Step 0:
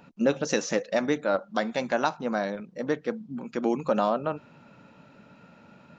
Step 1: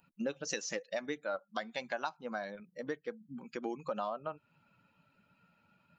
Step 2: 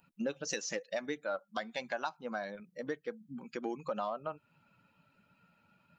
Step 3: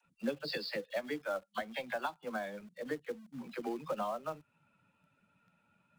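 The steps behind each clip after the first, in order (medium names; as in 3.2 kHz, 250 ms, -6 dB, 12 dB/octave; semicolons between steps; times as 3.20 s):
expander on every frequency bin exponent 1.5; bass shelf 470 Hz -10 dB; compression 2.5:1, threshold -43 dBFS, peak gain reduction 13 dB; trim +4.5 dB
saturation -21.5 dBFS, distortion -26 dB; trim +1 dB
knee-point frequency compression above 2.7 kHz 1.5:1; phase dispersion lows, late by 54 ms, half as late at 310 Hz; in parallel at -7 dB: companded quantiser 4-bit; on the sum: trim -3.5 dB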